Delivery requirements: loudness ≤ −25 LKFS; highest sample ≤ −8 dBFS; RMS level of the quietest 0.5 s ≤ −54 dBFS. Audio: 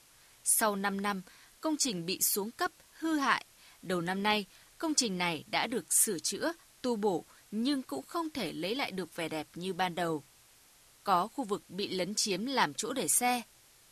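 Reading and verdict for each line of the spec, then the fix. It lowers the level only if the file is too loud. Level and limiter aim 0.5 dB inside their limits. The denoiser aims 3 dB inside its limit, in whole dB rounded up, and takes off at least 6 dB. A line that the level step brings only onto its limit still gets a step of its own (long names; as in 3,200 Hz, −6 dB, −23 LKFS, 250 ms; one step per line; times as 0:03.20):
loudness −32.0 LKFS: in spec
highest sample −11.0 dBFS: in spec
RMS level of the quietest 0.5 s −61 dBFS: in spec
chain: no processing needed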